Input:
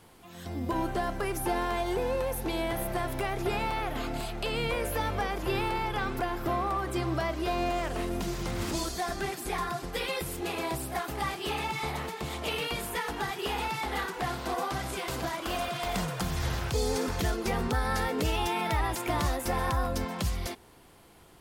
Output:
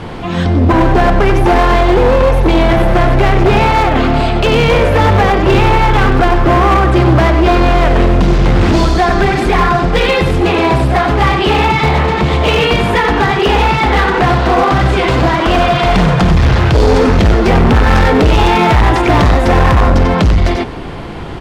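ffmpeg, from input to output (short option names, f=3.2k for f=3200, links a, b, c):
-filter_complex "[0:a]lowpass=3.3k,lowshelf=f=350:g=5.5,asplit=2[a][b];[b]adelay=93.29,volume=-7dB,highshelf=f=4k:g=-2.1[c];[a][c]amix=inputs=2:normalize=0,volume=26dB,asoftclip=hard,volume=-26dB,alimiter=level_in=33dB:limit=-1dB:release=50:level=0:latency=1,volume=-4.5dB"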